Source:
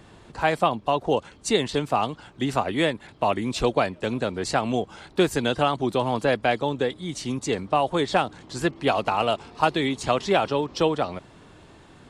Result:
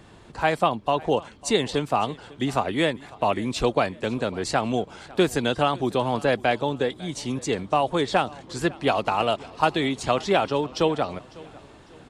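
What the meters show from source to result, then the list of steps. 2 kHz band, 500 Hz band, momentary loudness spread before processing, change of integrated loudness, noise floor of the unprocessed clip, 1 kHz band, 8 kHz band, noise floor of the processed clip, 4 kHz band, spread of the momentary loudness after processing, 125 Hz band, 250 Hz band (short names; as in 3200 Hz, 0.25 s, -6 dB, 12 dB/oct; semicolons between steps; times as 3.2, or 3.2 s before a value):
0.0 dB, 0.0 dB, 6 LU, 0.0 dB, -51 dBFS, 0.0 dB, 0.0 dB, -49 dBFS, 0.0 dB, 7 LU, 0.0 dB, 0.0 dB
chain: feedback echo 0.55 s, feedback 40%, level -22 dB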